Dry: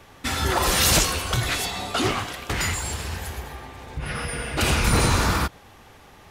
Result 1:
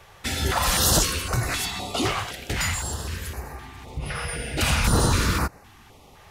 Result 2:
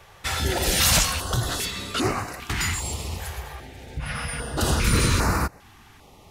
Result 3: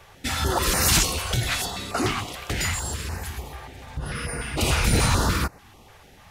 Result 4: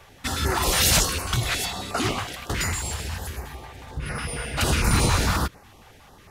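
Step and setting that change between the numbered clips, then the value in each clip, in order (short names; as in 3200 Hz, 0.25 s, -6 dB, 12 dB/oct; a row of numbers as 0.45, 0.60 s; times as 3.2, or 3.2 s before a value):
stepped notch, rate: 3.9, 2.5, 6.8, 11 Hz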